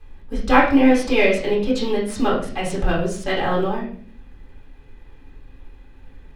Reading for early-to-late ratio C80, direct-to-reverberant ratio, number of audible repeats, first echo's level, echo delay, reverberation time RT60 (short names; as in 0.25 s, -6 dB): 10.0 dB, -5.0 dB, none, none, none, 0.50 s